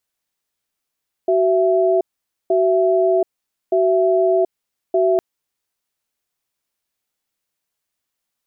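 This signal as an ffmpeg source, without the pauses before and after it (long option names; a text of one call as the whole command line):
ffmpeg -f lavfi -i "aevalsrc='0.168*(sin(2*PI*376*t)+sin(2*PI*665*t))*clip(min(mod(t,1.22),0.73-mod(t,1.22))/0.005,0,1)':duration=3.91:sample_rate=44100" out.wav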